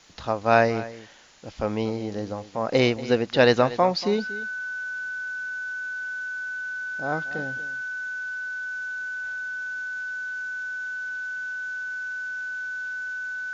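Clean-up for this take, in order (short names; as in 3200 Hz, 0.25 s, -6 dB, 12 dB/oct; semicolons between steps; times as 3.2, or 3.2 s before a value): notch 1500 Hz, Q 30; denoiser 30 dB, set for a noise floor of -35 dBFS; inverse comb 0.236 s -16.5 dB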